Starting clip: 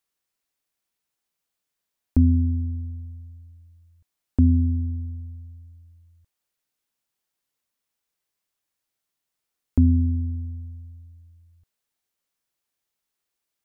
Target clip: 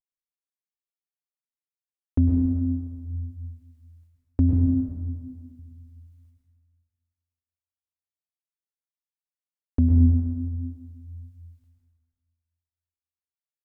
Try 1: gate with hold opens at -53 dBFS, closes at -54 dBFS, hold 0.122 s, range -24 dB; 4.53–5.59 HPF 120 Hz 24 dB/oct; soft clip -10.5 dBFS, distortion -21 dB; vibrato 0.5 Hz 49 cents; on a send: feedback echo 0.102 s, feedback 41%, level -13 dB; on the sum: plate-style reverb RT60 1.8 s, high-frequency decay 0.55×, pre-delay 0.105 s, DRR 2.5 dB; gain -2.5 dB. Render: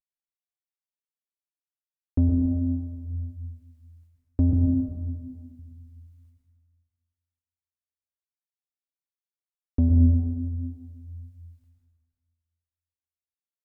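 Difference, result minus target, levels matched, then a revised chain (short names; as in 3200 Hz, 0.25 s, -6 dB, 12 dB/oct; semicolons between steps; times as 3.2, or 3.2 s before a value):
soft clip: distortion +12 dB
gate with hold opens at -53 dBFS, closes at -54 dBFS, hold 0.122 s, range -24 dB; 4.53–5.59 HPF 120 Hz 24 dB/oct; soft clip -3.5 dBFS, distortion -34 dB; vibrato 0.5 Hz 49 cents; on a send: feedback echo 0.102 s, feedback 41%, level -13 dB; on the sum: plate-style reverb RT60 1.8 s, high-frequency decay 0.55×, pre-delay 0.105 s, DRR 2.5 dB; gain -2.5 dB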